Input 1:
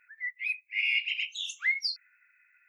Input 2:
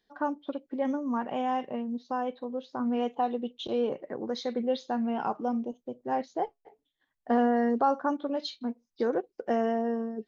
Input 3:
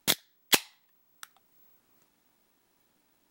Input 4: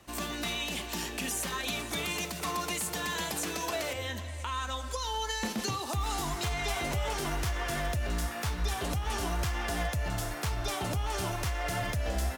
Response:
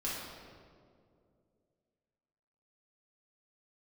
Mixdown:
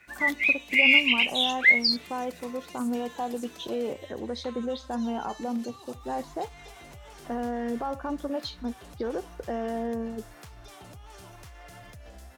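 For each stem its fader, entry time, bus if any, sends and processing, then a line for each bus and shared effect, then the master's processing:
+2.0 dB, 0.00 s, no send, octave-band graphic EQ 2,000/4,000/8,000 Hz +6/+10/−11 dB
0.0 dB, 0.00 s, no send, brickwall limiter −22.5 dBFS, peak gain reduction 8.5 dB
−14.5 dB, 0.20 s, no send, automatic ducking −17 dB, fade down 1.20 s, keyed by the second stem
−9.0 dB, 0.00 s, no send, downward compressor, threshold −35 dBFS, peak gain reduction 9 dB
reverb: not used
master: no processing

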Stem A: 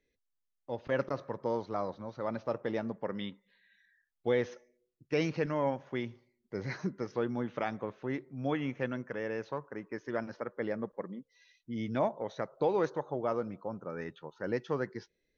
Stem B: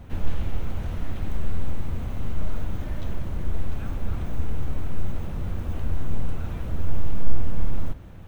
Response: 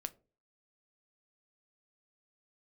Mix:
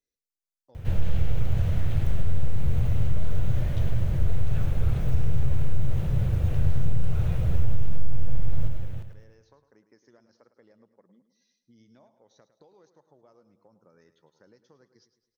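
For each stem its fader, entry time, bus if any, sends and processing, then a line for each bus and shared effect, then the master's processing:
−15.0 dB, 0.00 s, no send, echo send −12.5 dB, high shelf with overshoot 3,700 Hz +11 dB, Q 1.5; downward compressor 8 to 1, threshold −40 dBFS, peak gain reduction 15.5 dB
+1.5 dB, 0.75 s, no send, echo send −9.5 dB, octave-band graphic EQ 125/250/500/1,000 Hz +12/−11/+4/−6 dB; pitch modulation by a square or saw wave saw up 4.7 Hz, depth 100 cents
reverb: not used
echo: repeating echo 106 ms, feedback 49%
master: downward compressor, threshold −12 dBFS, peak gain reduction 9 dB

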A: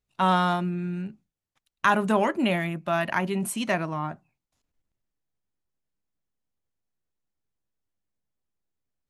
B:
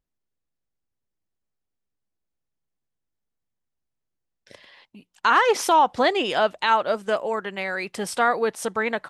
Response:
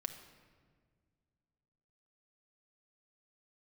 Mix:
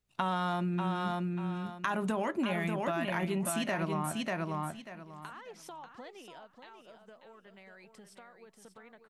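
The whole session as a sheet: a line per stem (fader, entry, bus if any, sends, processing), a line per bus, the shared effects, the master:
+1.5 dB, 0.00 s, no send, echo send −6 dB, brickwall limiter −17 dBFS, peak gain reduction 9 dB
0:05.98 −15 dB → 0:06.55 −22 dB, 0.00 s, no send, echo send −8 dB, parametric band 160 Hz +7.5 dB 0.96 octaves; downward compressor 16 to 1, threshold −29 dBFS, peak gain reduction 17 dB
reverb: not used
echo: repeating echo 590 ms, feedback 20%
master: downward compressor 6 to 1, threshold −29 dBFS, peak gain reduction 9 dB

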